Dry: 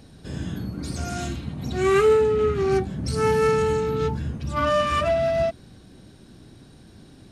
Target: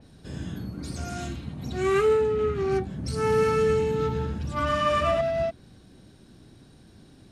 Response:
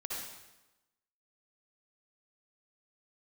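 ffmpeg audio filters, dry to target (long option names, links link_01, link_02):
-filter_complex "[0:a]asettb=1/sr,asplit=3[link_01][link_02][link_03];[link_01]atrim=end=3.194[link_04];[link_02]atrim=start=3.19:end=5.21,asetpts=PTS-STARTPTS,afade=type=in:duration=0.004:curve=qsin,afade=type=out:start_time=2.016:duration=0.004:curve=qsin,aecho=1:1:110|187|240.9|278.6|305:0.631|0.398|0.251|0.158|0.1,atrim=end_sample=89082[link_05];[link_03]atrim=start=5.206[link_06];[link_04][link_05]acrossfade=duration=0.004:curve1=hsin:curve2=qsin[link_07];[link_07][link_06]acrossfade=duration=0.004:curve1=qsin:curve2=hsin,adynamicequalizer=threshold=0.00891:dfrequency=3800:dqfactor=0.7:tfrequency=3800:tqfactor=0.7:attack=5:release=100:ratio=0.375:range=2:mode=cutabove:tftype=highshelf,volume=-4dB"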